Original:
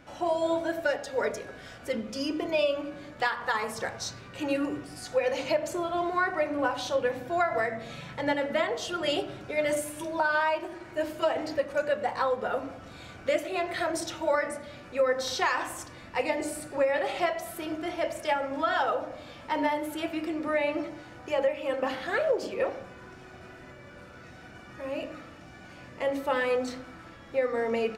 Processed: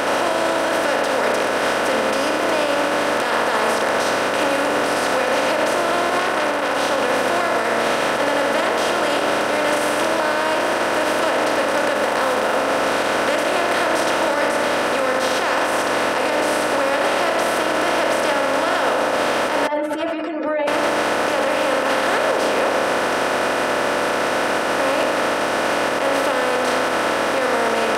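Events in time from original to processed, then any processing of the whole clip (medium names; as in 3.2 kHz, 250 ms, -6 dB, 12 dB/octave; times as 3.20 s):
6.19–6.80 s: transformer saturation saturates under 2 kHz
11.95–12.56 s: short-mantissa float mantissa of 4-bit
19.67–20.68 s: spectral contrast enhancement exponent 3.1
whole clip: spectral levelling over time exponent 0.2; peak limiter -9.5 dBFS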